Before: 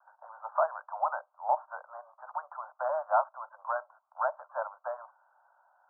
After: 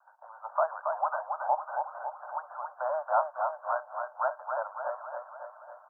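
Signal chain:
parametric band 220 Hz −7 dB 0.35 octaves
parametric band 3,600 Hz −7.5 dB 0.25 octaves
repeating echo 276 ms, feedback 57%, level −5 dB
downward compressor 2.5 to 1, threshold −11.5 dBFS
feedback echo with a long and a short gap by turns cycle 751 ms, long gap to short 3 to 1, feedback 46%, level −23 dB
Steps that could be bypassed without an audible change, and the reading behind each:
parametric band 220 Hz: nothing at its input below 480 Hz
parametric band 3,600 Hz: nothing at its input above 1,600 Hz
downward compressor, threshold −11.5 dBFS: peak of its input −14.5 dBFS

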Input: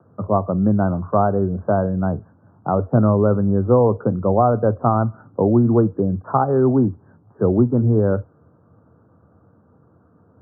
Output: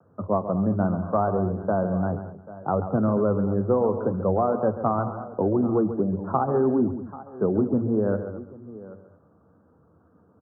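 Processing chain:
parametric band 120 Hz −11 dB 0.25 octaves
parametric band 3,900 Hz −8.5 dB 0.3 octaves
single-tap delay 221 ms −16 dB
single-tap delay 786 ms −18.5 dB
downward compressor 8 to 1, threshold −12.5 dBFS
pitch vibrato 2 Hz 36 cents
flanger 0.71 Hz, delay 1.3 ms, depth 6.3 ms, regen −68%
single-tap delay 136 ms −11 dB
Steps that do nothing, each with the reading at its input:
parametric band 3,900 Hz: nothing at its input above 1,500 Hz

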